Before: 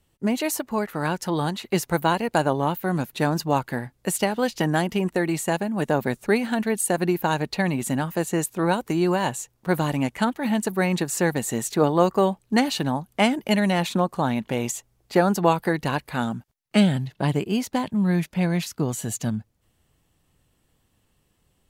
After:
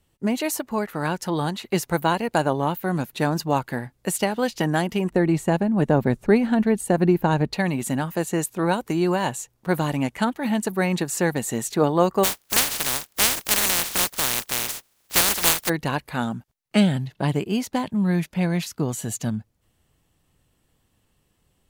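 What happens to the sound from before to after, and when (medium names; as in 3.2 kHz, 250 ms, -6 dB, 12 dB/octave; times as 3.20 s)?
5.10–7.53 s: tilt EQ -2.5 dB/octave
12.23–15.68 s: spectral contrast reduction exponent 0.11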